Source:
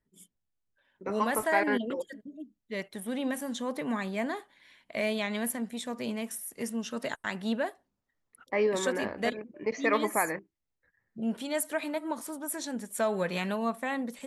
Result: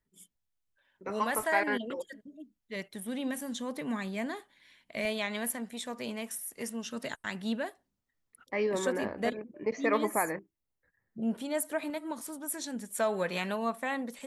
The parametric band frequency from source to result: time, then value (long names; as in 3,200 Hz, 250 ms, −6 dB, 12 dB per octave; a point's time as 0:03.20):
parametric band −5 dB 2.8 octaves
250 Hz
from 0:02.76 790 Hz
from 0:05.05 180 Hz
from 0:06.86 730 Hz
from 0:08.71 3,600 Hz
from 0:11.90 750 Hz
from 0:12.95 110 Hz